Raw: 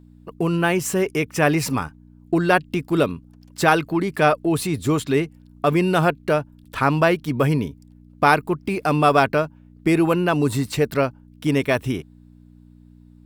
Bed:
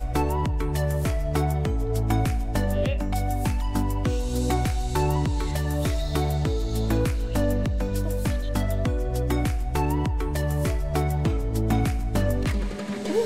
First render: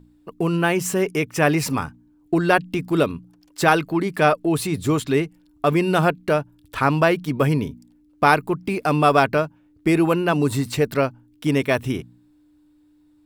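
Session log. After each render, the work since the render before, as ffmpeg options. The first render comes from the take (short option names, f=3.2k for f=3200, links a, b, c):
-af "bandreject=f=60:t=h:w=4,bandreject=f=120:t=h:w=4,bandreject=f=180:t=h:w=4,bandreject=f=240:t=h:w=4"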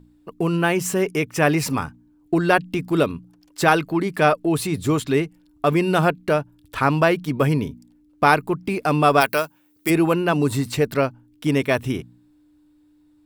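-filter_complex "[0:a]asplit=3[a][b][c];[a]afade=t=out:st=9.2:d=0.02[d];[b]aemphasis=mode=production:type=riaa,afade=t=in:st=9.2:d=0.02,afade=t=out:st=9.89:d=0.02[e];[c]afade=t=in:st=9.89:d=0.02[f];[d][e][f]amix=inputs=3:normalize=0"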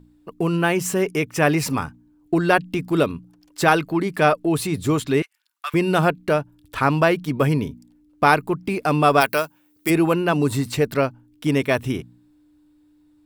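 -filter_complex "[0:a]asettb=1/sr,asplit=3[a][b][c];[a]atrim=end=5.224[d];[b]atrim=start=5.22:end=5.74,asetpts=PTS-STARTPTS,afade=t=in:d=0.004:c=qsin,afade=t=out:st=0.516:d=0.004:c=qsin,highpass=f=1.3k:w=0.5412,highpass=f=1.3k:w=1.3066[e];[c]atrim=start=5.736[f];[d][e]acrossfade=d=0.004:c1=hsin:c2=qsin[g];[g][f]acrossfade=d=0.004:c1=qsin:c2=hsin"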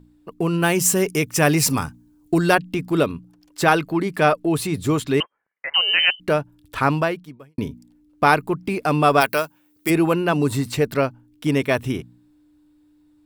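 -filter_complex "[0:a]asettb=1/sr,asplit=3[a][b][c];[a]atrim=end=0.624[d];[b]atrim=start=0.62:end=2.55,asetpts=PTS-STARTPTS,afade=t=in:d=0.004:c=qsin,afade=t=out:st=1.926:d=0.004:c=qsin,bass=f=250:g=3,treble=f=4k:g=10[e];[c]atrim=start=2.546[f];[d][e]acrossfade=d=0.004:c1=hsin:c2=qsin[g];[g][f]acrossfade=d=0.004:c1=qsin:c2=hsin,asettb=1/sr,asplit=3[h][i][j];[h]atrim=end=5.204[k];[i]atrim=start=5.2:end=6.2,asetpts=PTS-STARTPTS,afade=t=in:d=0.004:c=qsin,afade=t=out:st=0.996:d=0.004:c=qsin,lowpass=f=2.7k:t=q:w=0.5098,lowpass=f=2.7k:t=q:w=0.6013,lowpass=f=2.7k:t=q:w=0.9,lowpass=f=2.7k:t=q:w=2.563,afreqshift=-3200[l];[j]atrim=start=6.196[m];[k][l]acrossfade=d=0.004:c1=hsin:c2=qsin[n];[n][m]acrossfade=d=0.004:c1=qsin:c2=hsin,asplit=2[o][p];[o]atrim=end=7.58,asetpts=PTS-STARTPTS,afade=t=out:st=6.91:d=0.67:c=qua[q];[p]atrim=start=7.58,asetpts=PTS-STARTPTS,afade=t=in:d=0.004:c=hsin[r];[q][r]concat=n=2:v=0:a=1"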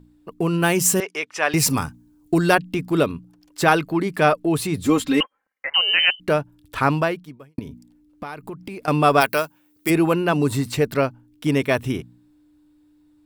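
-filter_complex "[0:a]asettb=1/sr,asplit=3[a][b][c];[a]atrim=end=1.004[d];[b]atrim=start=1:end=1.54,asetpts=PTS-STARTPTS,afade=t=in:d=0.004:c=qsin,afade=t=out:st=0.536:d=0.004:c=qsin,highpass=700,lowpass=3.7k[e];[c]atrim=start=1.536[f];[d][e]acrossfade=d=0.004:c1=hsin:c2=qsin[g];[g][f]acrossfade=d=0.004:c1=qsin:c2=hsin,asettb=1/sr,asplit=3[h][i][j];[h]atrim=end=4.854[k];[i]atrim=start=4.85:end=5.67,asetpts=PTS-STARTPTS,afade=t=in:d=0.004:c=qsin,afade=t=out:st=0.816:d=0.004:c=qsin,aecho=1:1:3.8:0.83,atrim=end_sample=36162[l];[j]atrim=start=5.666[m];[k][l]acrossfade=d=0.004:c1=hsin:c2=qsin[n];[n][m]acrossfade=d=0.004:c1=qsin:c2=hsin,asettb=1/sr,asplit=3[o][p][q];[o]atrim=end=7.594[r];[p]atrim=start=7.59:end=8.88,asetpts=PTS-STARTPTS,afade=t=in:d=0.004:c=qsin,afade=t=out:st=1.286:d=0.004:c=qsin,acompressor=threshold=-30dB:ratio=6:attack=3.2:release=140:knee=1:detection=peak[s];[q]atrim=start=8.876[t];[r][s]acrossfade=d=0.004:c1=hsin:c2=qsin[u];[u][t]acrossfade=d=0.004:c1=qsin:c2=hsin"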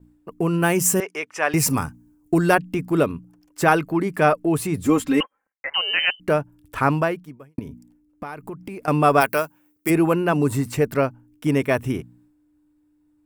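-af "agate=range=-33dB:threshold=-52dB:ratio=3:detection=peak,equalizer=f=3.9k:w=1.6:g=-9.5"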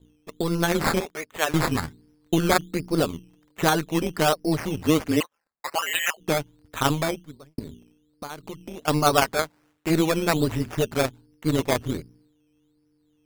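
-af "acrusher=samples=12:mix=1:aa=0.000001:lfo=1:lforange=7.2:lforate=1.3,tremolo=f=160:d=0.75"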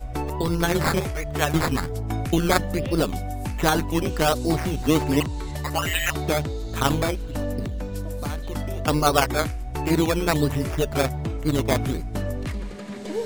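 -filter_complex "[1:a]volume=-4.5dB[a];[0:a][a]amix=inputs=2:normalize=0"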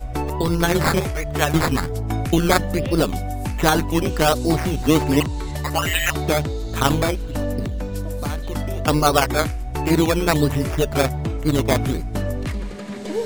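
-af "volume=3.5dB,alimiter=limit=-3dB:level=0:latency=1"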